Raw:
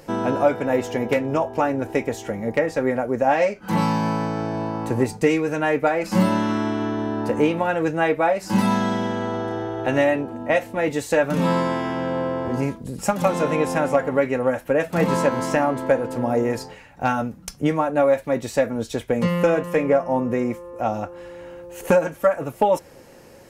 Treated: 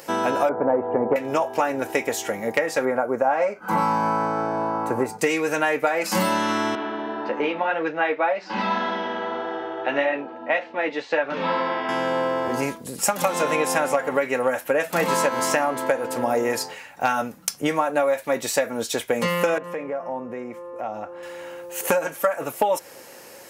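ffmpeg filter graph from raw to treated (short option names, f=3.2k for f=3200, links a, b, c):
-filter_complex "[0:a]asettb=1/sr,asplit=3[a][b][c];[a]atrim=end=0.494[d];[b]atrim=start=0.49:end=1.16,asetpts=PTS-STARTPTS,afade=t=in:d=0.004:c=qsin,afade=t=out:st=0.666:d=0.004:c=qsin,lowpass=f=1.1k:w=0.5412,lowpass=f=1.1k:w=1.3066,acontrast=43[e];[c]atrim=start=1.156[f];[d][e]acrossfade=d=0.004:c1=hsin:c2=qsin[g];[g][f]acrossfade=d=0.004:c1=qsin:c2=hsin,asettb=1/sr,asplit=3[h][i][j];[h]atrim=end=2.854[k];[i]atrim=start=2.85:end=5.19,asetpts=PTS-STARTPTS,afade=t=in:d=0.004:c=qsin,afade=t=out:st=2.336:d=0.004:c=qsin,highshelf=f=2.2k:t=q:w=1.5:g=-11,bandreject=f=1.8k:w=5.1[l];[j]atrim=start=5.186[m];[k][l]acrossfade=d=0.004:c1=hsin:c2=qsin[n];[n][m]acrossfade=d=0.004:c1=qsin:c2=hsin,asettb=1/sr,asplit=3[o][p][q];[o]atrim=end=6.754[r];[p]atrim=start=6.75:end=11.89,asetpts=PTS-STARTPTS,afade=t=in:d=0.004:c=qsin,afade=t=out:st=5.136:d=0.004:c=qsin,lowpass=f=5.5k:w=0.5412,lowpass=f=5.5k:w=1.3066,flanger=delay=5.3:depth=5.4:regen=-41:speed=1.8:shape=triangular,acrossover=split=170 4300:gain=0.141 1 0.0891[s][t][u];[s][t][u]amix=inputs=3:normalize=0[v];[q]atrim=start=11.886[w];[r][v]acrossfade=d=0.004:c1=hsin:c2=qsin[x];[x][w]acrossfade=d=0.004:c1=qsin:c2=hsin,asettb=1/sr,asplit=3[y][z][aa];[y]atrim=end=19.584[ab];[z]atrim=start=19.58:end=21.23,asetpts=PTS-STARTPTS,afade=t=in:d=0.004:c=qsin,afade=t=out:st=1.646:d=0.004:c=qsin,lowpass=f=1.3k:p=1,acompressor=threshold=-30dB:ratio=3:attack=3.2:release=140:knee=1:detection=peak[ac];[aa]atrim=start=21.226[ad];[ab][ac]acrossfade=d=0.004:c1=hsin:c2=qsin[ae];[ae][ad]acrossfade=d=0.004:c1=qsin:c2=hsin,highpass=f=810:p=1,highshelf=f=9.6k:g=8,acompressor=threshold=-24dB:ratio=6,volume=7dB"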